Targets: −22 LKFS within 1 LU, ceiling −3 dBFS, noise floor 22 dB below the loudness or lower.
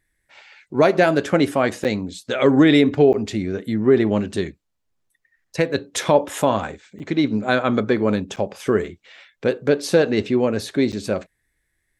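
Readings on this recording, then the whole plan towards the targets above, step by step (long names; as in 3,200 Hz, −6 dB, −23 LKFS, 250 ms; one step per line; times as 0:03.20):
number of dropouts 5; longest dropout 8.3 ms; integrated loudness −20.0 LKFS; sample peak −2.0 dBFS; target loudness −22.0 LKFS
→ repair the gap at 0:01.84/0:03.13/0:06.99/0:08.36/0:10.92, 8.3 ms
level −2 dB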